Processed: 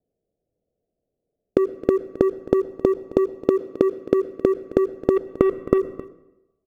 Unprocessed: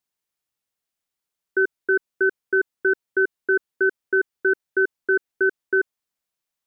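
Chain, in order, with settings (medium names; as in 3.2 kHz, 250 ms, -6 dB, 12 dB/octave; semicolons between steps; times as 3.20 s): 5.16–5.78 s: square wave that keeps the level; steep low-pass 690 Hz 72 dB/octave; peaking EQ 460 Hz +5.5 dB 0.4 oct; in parallel at +1.5 dB: level held to a coarse grid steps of 19 dB; on the sum: waveshaping leveller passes 2; inverted gate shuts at -22 dBFS, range -29 dB; saturation -18 dBFS, distortion -18 dB; delay 266 ms -18.5 dB; reverberation RT60 0.95 s, pre-delay 97 ms, DRR 17.5 dB; loudness maximiser +20.5 dB; trim -1 dB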